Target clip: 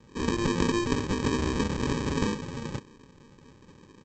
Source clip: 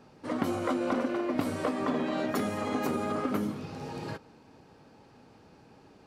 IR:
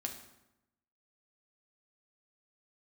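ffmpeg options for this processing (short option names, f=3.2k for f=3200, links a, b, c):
-af "atempo=1.5,aresample=16000,acrusher=samples=23:mix=1:aa=0.000001,aresample=44100,volume=3.5dB"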